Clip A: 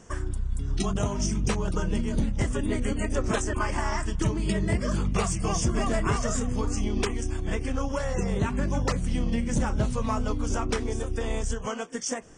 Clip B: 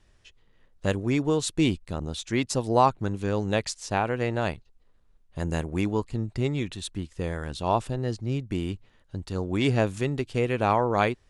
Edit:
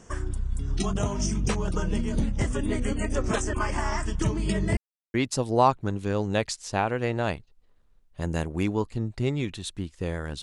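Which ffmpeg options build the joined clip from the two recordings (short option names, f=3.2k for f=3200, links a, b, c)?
-filter_complex "[0:a]apad=whole_dur=10.42,atrim=end=10.42,asplit=2[a][b];[a]atrim=end=4.77,asetpts=PTS-STARTPTS,afade=t=out:st=4.766:d=0.004:c=hsin[c];[b]atrim=start=4.77:end=5.14,asetpts=PTS-STARTPTS,volume=0[d];[1:a]atrim=start=2.32:end=7.6,asetpts=PTS-STARTPTS,afade=t=in:d=0.004:c=hsin[e];[c][d][e]concat=n=3:v=0:a=1"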